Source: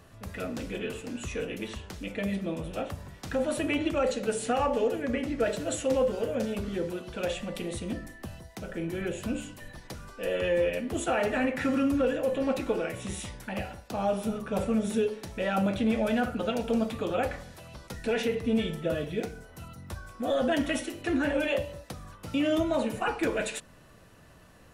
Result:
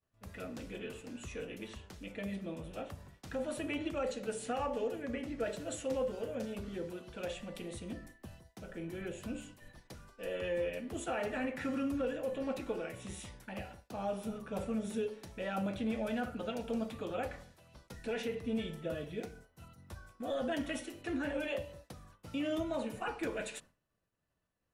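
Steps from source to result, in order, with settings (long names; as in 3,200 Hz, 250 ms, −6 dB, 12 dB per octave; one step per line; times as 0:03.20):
downward expander −41 dBFS
level −9 dB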